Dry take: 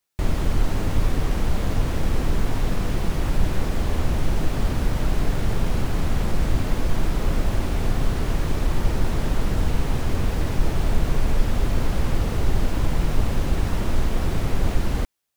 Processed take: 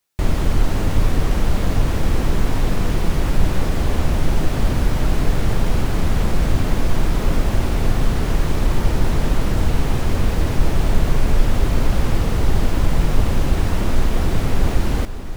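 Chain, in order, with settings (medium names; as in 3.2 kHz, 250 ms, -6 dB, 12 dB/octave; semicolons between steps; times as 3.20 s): echo that smears into a reverb 535 ms, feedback 76%, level -15 dB; trim +4 dB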